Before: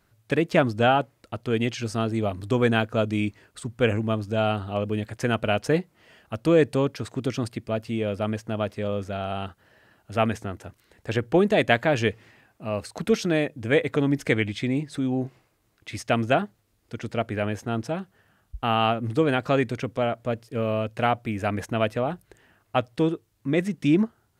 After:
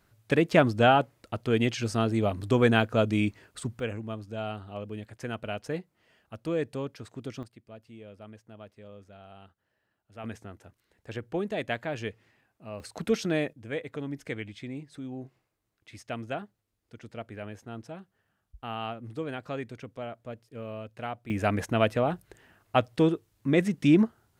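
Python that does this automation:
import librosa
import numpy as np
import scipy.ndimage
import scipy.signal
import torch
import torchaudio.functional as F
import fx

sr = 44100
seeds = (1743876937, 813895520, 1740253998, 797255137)

y = fx.gain(x, sr, db=fx.steps((0.0, -0.5), (3.8, -11.0), (7.43, -20.0), (10.24, -11.5), (12.8, -4.5), (13.53, -13.0), (21.3, 0.0)))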